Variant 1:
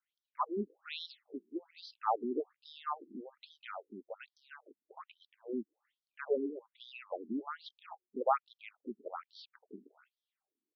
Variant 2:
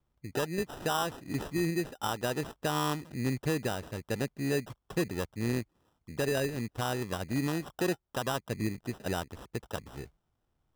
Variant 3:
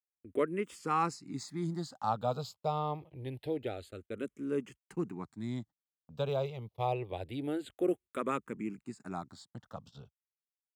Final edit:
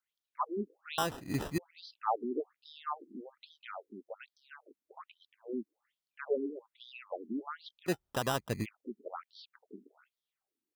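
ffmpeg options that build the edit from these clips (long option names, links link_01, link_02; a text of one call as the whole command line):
ffmpeg -i take0.wav -i take1.wav -filter_complex "[1:a]asplit=2[link_01][link_02];[0:a]asplit=3[link_03][link_04][link_05];[link_03]atrim=end=0.982[link_06];[link_01]atrim=start=0.978:end=1.582[link_07];[link_04]atrim=start=1.578:end=7.9[link_08];[link_02]atrim=start=7.86:end=8.66[link_09];[link_05]atrim=start=8.62[link_10];[link_06][link_07]acrossfade=duration=0.004:curve1=hsin:curve2=hsin[link_11];[link_11][link_08]acrossfade=duration=0.004:curve1=hsin:curve2=hsin[link_12];[link_12][link_09]acrossfade=duration=0.04:curve1=tri:curve2=tri[link_13];[link_13][link_10]acrossfade=duration=0.04:curve1=tri:curve2=tri" out.wav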